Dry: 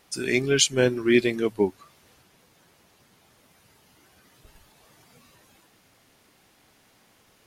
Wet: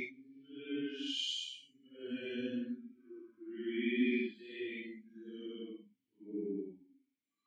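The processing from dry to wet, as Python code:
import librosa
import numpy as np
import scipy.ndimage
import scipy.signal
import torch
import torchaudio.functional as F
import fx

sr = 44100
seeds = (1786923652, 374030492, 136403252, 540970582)

y = fx.vowel_filter(x, sr, vowel='i')
y = fx.paulstretch(y, sr, seeds[0], factor=5.2, window_s=0.1, from_s=0.38)
y = fx.noise_reduce_blind(y, sr, reduce_db=18)
y = y * librosa.db_to_amplitude(-6.0)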